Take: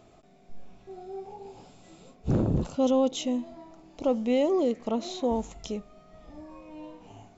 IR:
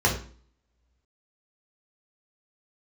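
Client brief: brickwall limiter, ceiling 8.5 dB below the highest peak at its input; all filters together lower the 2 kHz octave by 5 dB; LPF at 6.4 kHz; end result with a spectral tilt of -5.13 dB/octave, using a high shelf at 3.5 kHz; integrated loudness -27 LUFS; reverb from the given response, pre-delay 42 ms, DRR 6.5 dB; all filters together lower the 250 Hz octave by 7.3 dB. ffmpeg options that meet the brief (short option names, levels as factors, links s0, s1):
-filter_complex "[0:a]lowpass=6400,equalizer=f=250:t=o:g=-8.5,equalizer=f=2000:t=o:g=-7.5,highshelf=f=3500:g=3,alimiter=level_in=1.19:limit=0.0631:level=0:latency=1,volume=0.841,asplit=2[s0][s1];[1:a]atrim=start_sample=2205,adelay=42[s2];[s1][s2]afir=irnorm=-1:irlink=0,volume=0.0841[s3];[s0][s3]amix=inputs=2:normalize=0,volume=2.37"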